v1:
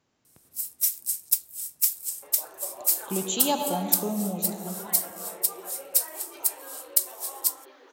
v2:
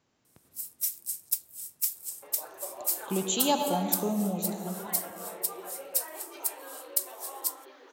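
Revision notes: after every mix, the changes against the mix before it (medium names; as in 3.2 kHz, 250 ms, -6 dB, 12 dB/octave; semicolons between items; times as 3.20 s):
first sound -6.0 dB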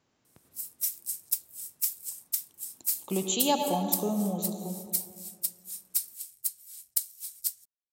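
second sound: muted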